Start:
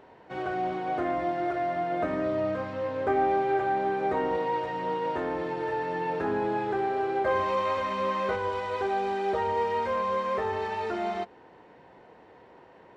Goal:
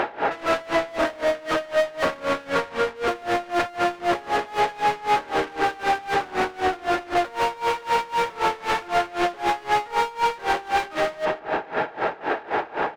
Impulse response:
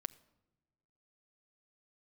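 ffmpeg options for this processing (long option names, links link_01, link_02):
-filter_complex "[0:a]asetrate=39289,aresample=44100,atempo=1.12246,asplit=2[link_01][link_02];[1:a]atrim=start_sample=2205,asetrate=43659,aresample=44100[link_03];[link_02][link_03]afir=irnorm=-1:irlink=0,volume=8.5dB[link_04];[link_01][link_04]amix=inputs=2:normalize=0,asplit=2[link_05][link_06];[link_06]highpass=frequency=720:poles=1,volume=39dB,asoftclip=type=tanh:threshold=-5dB[link_07];[link_05][link_07]amix=inputs=2:normalize=0,lowpass=frequency=1000:poles=1,volume=-6dB,asplit=2[link_08][link_09];[link_09]adelay=148,lowpass=frequency=2000:poles=1,volume=-5dB,asplit=2[link_10][link_11];[link_11]adelay=148,lowpass=frequency=2000:poles=1,volume=0.52,asplit=2[link_12][link_13];[link_13]adelay=148,lowpass=frequency=2000:poles=1,volume=0.52,asplit=2[link_14][link_15];[link_15]adelay=148,lowpass=frequency=2000:poles=1,volume=0.52,asplit=2[link_16][link_17];[link_17]adelay=148,lowpass=frequency=2000:poles=1,volume=0.52,asplit=2[link_18][link_19];[link_19]adelay=148,lowpass=frequency=2000:poles=1,volume=0.52,asplit=2[link_20][link_21];[link_21]adelay=148,lowpass=frequency=2000:poles=1,volume=0.52[link_22];[link_08][link_10][link_12][link_14][link_16][link_18][link_20][link_22]amix=inputs=8:normalize=0,alimiter=limit=-12dB:level=0:latency=1:release=72,tiltshelf=frequency=780:gain=-6.5,aeval=exprs='val(0)*pow(10,-23*(0.5-0.5*cos(2*PI*3.9*n/s))/20)':channel_layout=same"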